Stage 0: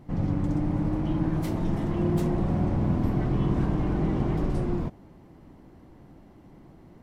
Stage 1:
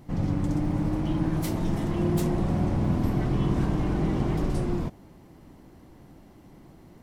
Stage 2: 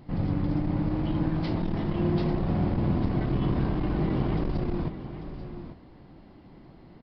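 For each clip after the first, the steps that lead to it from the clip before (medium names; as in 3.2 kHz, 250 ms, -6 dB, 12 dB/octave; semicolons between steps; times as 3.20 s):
treble shelf 3.6 kHz +10 dB
delay 842 ms -12 dB; resampled via 11.025 kHz; transformer saturation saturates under 110 Hz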